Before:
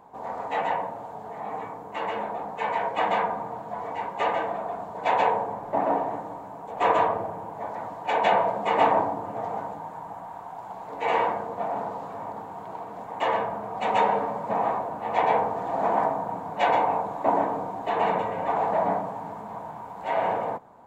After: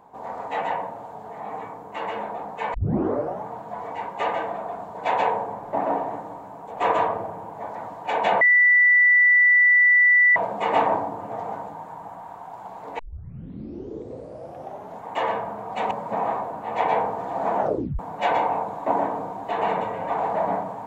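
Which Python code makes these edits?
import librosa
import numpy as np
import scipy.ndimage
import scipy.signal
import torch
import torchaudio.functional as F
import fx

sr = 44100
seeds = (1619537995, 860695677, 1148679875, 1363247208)

y = fx.edit(x, sr, fx.tape_start(start_s=2.74, length_s=0.73),
    fx.insert_tone(at_s=8.41, length_s=1.95, hz=1970.0, db=-12.5),
    fx.tape_start(start_s=11.04, length_s=2.04),
    fx.cut(start_s=13.96, length_s=0.33),
    fx.tape_stop(start_s=15.95, length_s=0.42), tone=tone)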